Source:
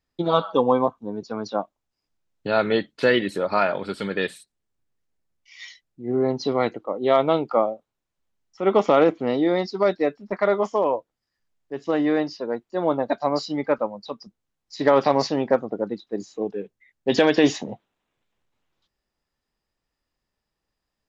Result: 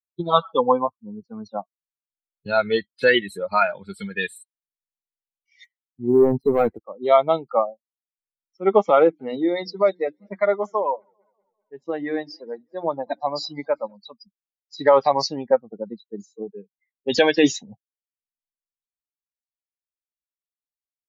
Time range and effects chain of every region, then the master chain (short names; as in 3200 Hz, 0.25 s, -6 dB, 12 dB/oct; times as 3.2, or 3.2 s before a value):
0.73–1.54 high shelf 2600 Hz -6.5 dB + mismatched tape noise reduction decoder only
5.64–6.81 LPF 1300 Hz + sample leveller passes 2
9–13.97 notches 60/120/180/240/300/360 Hz + warbling echo 0.197 s, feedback 70%, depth 131 cents, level -21 dB
whole clip: per-bin expansion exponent 2; dynamic EQ 190 Hz, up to -6 dB, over -37 dBFS, Q 0.71; gain +7 dB